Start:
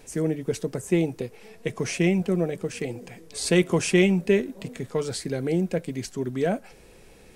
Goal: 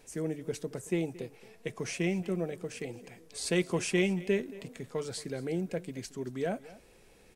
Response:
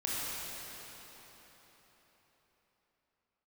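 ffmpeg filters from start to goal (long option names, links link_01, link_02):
-af "lowshelf=frequency=370:gain=-3,aecho=1:1:225:0.112,volume=-7dB"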